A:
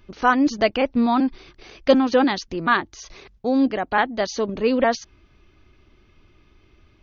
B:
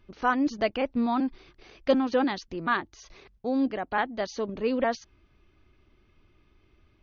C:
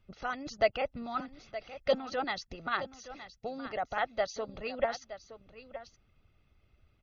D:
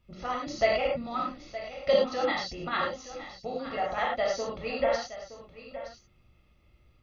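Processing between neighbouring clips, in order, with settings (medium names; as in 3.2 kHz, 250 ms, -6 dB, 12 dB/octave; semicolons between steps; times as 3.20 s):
treble shelf 5.4 kHz -6.5 dB; trim -7 dB
comb 1.5 ms, depth 63%; harmonic-percussive split harmonic -12 dB; delay 919 ms -13.5 dB; trim -2 dB
band-stop 1.5 kHz, Q 8.6; gated-style reverb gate 130 ms flat, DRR -3.5 dB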